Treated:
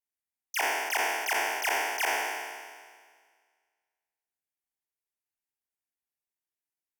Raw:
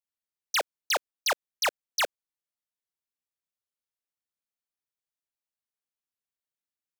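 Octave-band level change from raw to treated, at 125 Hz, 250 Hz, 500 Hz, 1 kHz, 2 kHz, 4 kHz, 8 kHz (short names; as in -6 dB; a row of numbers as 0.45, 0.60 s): n/a, +6.5 dB, -0.5 dB, +3.0 dB, +4.0 dB, -4.5 dB, +0.5 dB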